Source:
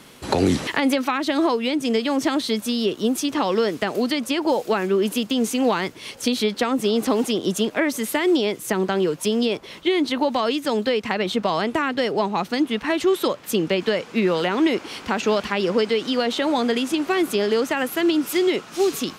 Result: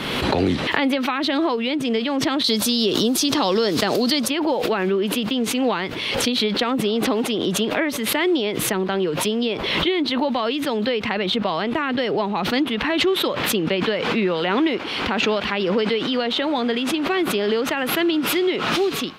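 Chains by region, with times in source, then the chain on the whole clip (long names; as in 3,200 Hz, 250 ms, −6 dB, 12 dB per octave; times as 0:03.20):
0:02.44–0:04.28: high shelf with overshoot 3,600 Hz +9.5 dB, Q 1.5 + envelope flattener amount 50%
whole clip: high shelf with overshoot 5,000 Hz −10.5 dB, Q 1.5; background raised ahead of every attack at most 30 dB per second; level −1.5 dB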